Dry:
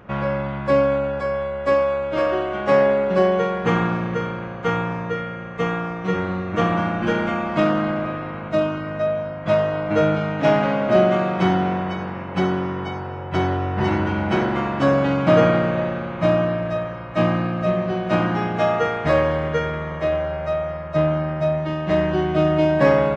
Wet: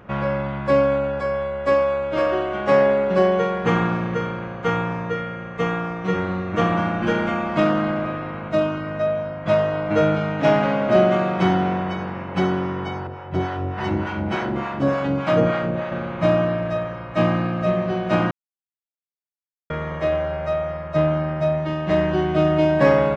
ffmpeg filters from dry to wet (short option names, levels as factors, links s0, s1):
-filter_complex "[0:a]asettb=1/sr,asplit=3[s0][s1][s2];[s0]atrim=end=13.074[s3];[s1]atrim=start=13.07:end=15.92,asetpts=PTS-STARTPTS,afade=t=in:d=0.004:c=qsin,afade=t=out:st=2.846:d=0.004:c=qsin,acrossover=split=640[s4][s5];[s4]aeval=exprs='val(0)*(1-0.7/2+0.7/2*cos(2*PI*3.4*n/s))':c=same[s6];[s5]aeval=exprs='val(0)*(1-0.7/2-0.7/2*cos(2*PI*3.4*n/s))':c=same[s7];[s6][s7]amix=inputs=2:normalize=0[s8];[s2]atrim=start=15.916[s9];[s3][s8]acrossfade=d=0.004:c1=hsin:c2=qsin[s10];[s10][s9]acrossfade=d=0.004:c1=qsin:c2=hsin,asplit=3[s11][s12][s13];[s11]atrim=end=18.31,asetpts=PTS-STARTPTS,afade=t=out:st=18.306:d=0.004:c=hsin[s14];[s12]atrim=start=18.31:end=19.7,asetpts=PTS-STARTPTS,volume=0[s15];[s13]atrim=start=19.7,asetpts=PTS-STARTPTS,afade=t=in:d=0.004:c=hsin[s16];[s14][s15][s16]concat=n=3:v=0:a=1"